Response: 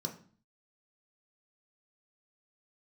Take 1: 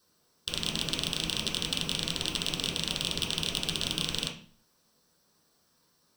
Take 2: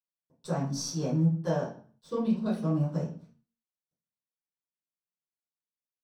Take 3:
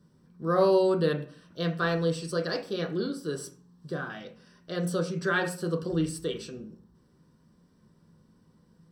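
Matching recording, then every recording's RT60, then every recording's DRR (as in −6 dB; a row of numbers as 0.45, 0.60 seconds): 3; 0.45, 0.45, 0.45 seconds; −3.5, −13.5, 2.0 decibels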